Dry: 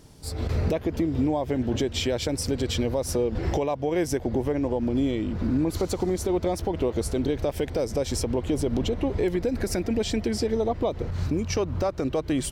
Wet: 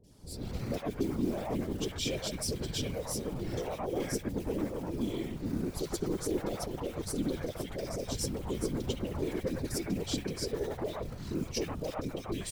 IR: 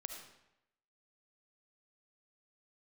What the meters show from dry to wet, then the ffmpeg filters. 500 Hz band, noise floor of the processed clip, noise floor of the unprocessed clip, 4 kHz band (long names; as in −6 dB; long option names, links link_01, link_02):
−10.0 dB, −45 dBFS, −37 dBFS, −5.5 dB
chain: -filter_complex "[0:a]flanger=delay=4.7:depth=5.1:regen=-24:speed=0.17:shape=triangular,aeval=exprs='0.141*(cos(1*acos(clip(val(0)/0.141,-1,1)))-cos(1*PI/2))+0.00355*(cos(3*acos(clip(val(0)/0.141,-1,1)))-cos(3*PI/2))+0.000891*(cos(4*acos(clip(val(0)/0.141,-1,1)))-cos(4*PI/2))+0.00562*(cos(5*acos(clip(val(0)/0.141,-1,1)))-cos(5*PI/2))+0.0112*(cos(6*acos(clip(val(0)/0.141,-1,1)))-cos(6*PI/2))':channel_layout=same,acrusher=bits=7:mode=log:mix=0:aa=0.000001,afftfilt=real='hypot(re,im)*cos(2*PI*random(0))':imag='hypot(re,im)*sin(2*PI*random(1))':win_size=512:overlap=0.75,acrossover=split=640|2200[link_01][link_02][link_03];[link_03]adelay=40[link_04];[link_02]adelay=110[link_05];[link_01][link_05][link_04]amix=inputs=3:normalize=0,adynamicequalizer=threshold=0.00251:dfrequency=2000:dqfactor=0.7:tfrequency=2000:tqfactor=0.7:attack=5:release=100:ratio=0.375:range=2:mode=boostabove:tftype=highshelf,volume=1dB"